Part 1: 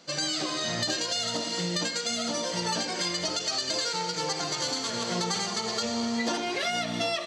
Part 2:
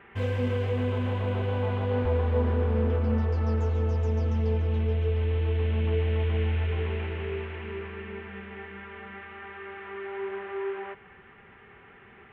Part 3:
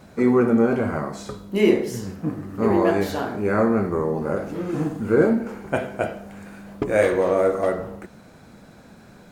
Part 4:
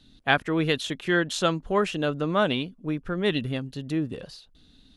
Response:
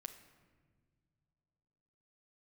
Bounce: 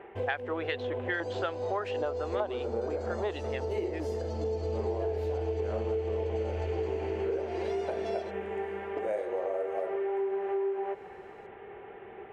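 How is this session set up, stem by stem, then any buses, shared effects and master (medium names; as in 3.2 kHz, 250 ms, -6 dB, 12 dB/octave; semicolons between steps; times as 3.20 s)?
7.29 s -23 dB -> 7.56 s -15.5 dB, 1.05 s, no send, peak limiter -21 dBFS, peak gain reduction 3.5 dB
-2.5 dB, 0.00 s, no send, auto duck -9 dB, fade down 0.25 s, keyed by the fourth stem
-16.5 dB, 2.15 s, no send, frequency weighting A
+2.0 dB, 0.00 s, no send, level-controlled noise filter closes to 500 Hz, open at -18 dBFS; treble shelf 3.4 kHz +10 dB; LFO band-pass saw up 2.5 Hz 950–2100 Hz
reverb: none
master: high-order bell 530 Hz +13.5 dB; compression 6:1, threshold -29 dBFS, peak gain reduction 16 dB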